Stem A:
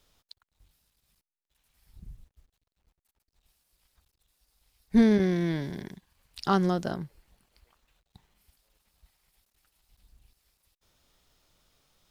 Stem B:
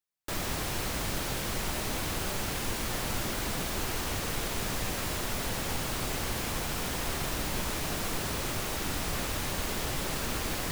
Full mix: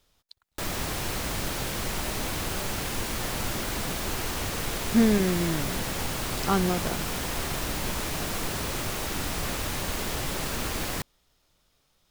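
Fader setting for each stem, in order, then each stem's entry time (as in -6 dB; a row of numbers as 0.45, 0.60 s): -0.5, +2.0 dB; 0.00, 0.30 s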